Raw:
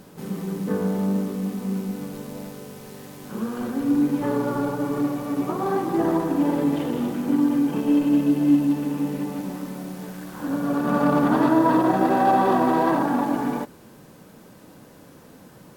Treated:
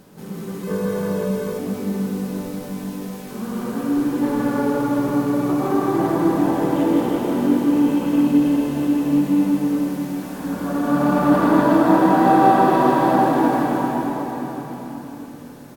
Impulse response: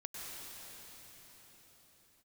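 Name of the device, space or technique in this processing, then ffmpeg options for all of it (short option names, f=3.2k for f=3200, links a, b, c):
cave: -filter_complex "[0:a]aecho=1:1:162:0.398[a];[1:a]atrim=start_sample=2205[b];[a][b]afir=irnorm=-1:irlink=0,asettb=1/sr,asplit=3[c][d][e];[c]atrim=end=0.634[f];[d]atrim=start=0.63:end=1.59,asetpts=PTS-STARTPTS,afade=t=in:d=0.004:c=qsin,afade=t=out:st=0.956:d=0.004:c=qsin,aecho=1:1:1.9:0.62,atrim=end_sample=42336[g];[e]atrim=start=1.586[h];[f][g]acrossfade=d=0.004:c1=hsin:c2=qsin[i];[i][h]acrossfade=d=0.004:c1=qsin:c2=hsin,volume=4dB"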